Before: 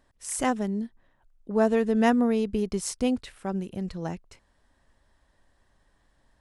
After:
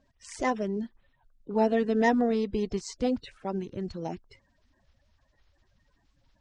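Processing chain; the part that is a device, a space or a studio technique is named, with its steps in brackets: clip after many re-uploads (LPF 6100 Hz 24 dB/oct; bin magnitudes rounded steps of 30 dB); gain -1.5 dB

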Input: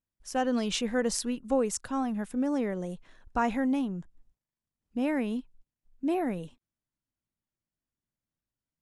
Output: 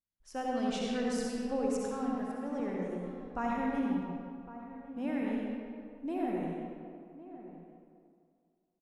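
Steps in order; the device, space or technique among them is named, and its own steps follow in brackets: 2.15–2.6 HPF 300 Hz 24 dB/oct; swimming-pool hall (reverb RT60 2.2 s, pre-delay 58 ms, DRR -3.5 dB; high shelf 5000 Hz -7 dB); outdoor echo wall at 190 m, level -14 dB; gain -9 dB

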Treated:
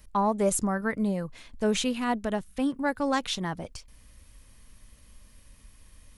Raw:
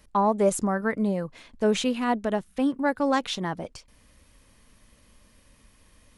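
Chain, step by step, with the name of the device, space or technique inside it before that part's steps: smiley-face EQ (low shelf 100 Hz +9 dB; bell 410 Hz -3.5 dB 2.7 oct; high shelf 7600 Hz +6.5 dB); gain -1 dB

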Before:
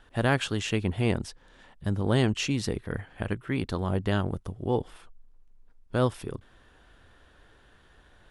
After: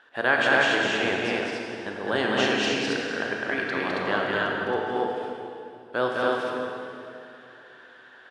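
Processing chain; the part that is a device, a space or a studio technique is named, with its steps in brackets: station announcement (BPF 420–4700 Hz; bell 1600 Hz +8 dB 0.27 oct; loudspeakers at several distances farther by 71 m -2 dB, 94 m -1 dB; reverb RT60 2.7 s, pre-delay 24 ms, DRR 0.5 dB); gain +1.5 dB

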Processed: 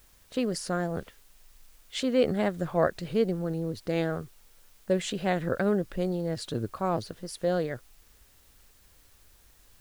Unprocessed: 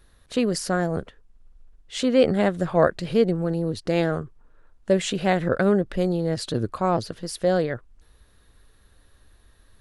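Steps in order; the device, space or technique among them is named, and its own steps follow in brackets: plain cassette with noise reduction switched in (mismatched tape noise reduction decoder only; wow and flutter; white noise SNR 31 dB); 0.96–2 dynamic EQ 2500 Hz, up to +6 dB, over -52 dBFS, Q 0.71; gain -6 dB

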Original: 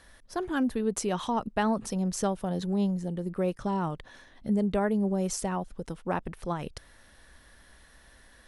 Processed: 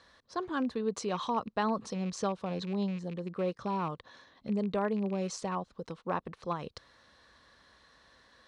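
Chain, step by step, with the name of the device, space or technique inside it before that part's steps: car door speaker with a rattle (rattling part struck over -32 dBFS, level -36 dBFS; speaker cabinet 87–7000 Hz, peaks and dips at 490 Hz +5 dB, 1100 Hz +9 dB, 4100 Hz +8 dB); gain -5.5 dB

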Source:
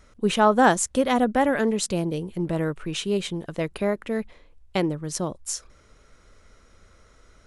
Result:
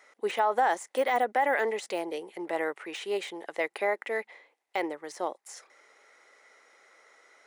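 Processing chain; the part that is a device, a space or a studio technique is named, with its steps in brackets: laptop speaker (HPF 380 Hz 24 dB/oct; bell 810 Hz +9.5 dB 0.35 oct; bell 2000 Hz +12 dB 0.35 oct; limiter -13 dBFS, peak gain reduction 12 dB); de-esser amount 85%; gain -3 dB

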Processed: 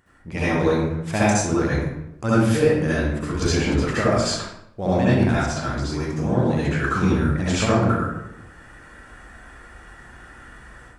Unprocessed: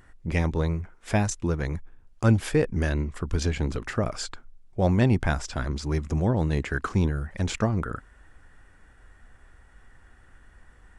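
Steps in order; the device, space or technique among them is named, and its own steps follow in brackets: far laptop microphone (reverb RT60 0.85 s, pre-delay 60 ms, DRR -9.5 dB; HPF 130 Hz 6 dB/oct; AGC gain up to 10.5 dB); gain -5.5 dB

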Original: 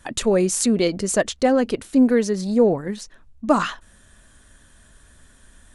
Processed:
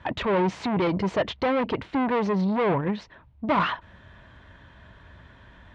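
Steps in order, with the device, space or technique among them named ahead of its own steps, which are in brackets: guitar amplifier (tube stage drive 26 dB, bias 0.25; tone controls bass +10 dB, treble +1 dB; speaker cabinet 100–3500 Hz, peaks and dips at 150 Hz -4 dB, 230 Hz -8 dB, 630 Hz +4 dB, 950 Hz +9 dB, 2100 Hz +4 dB); gain +3 dB

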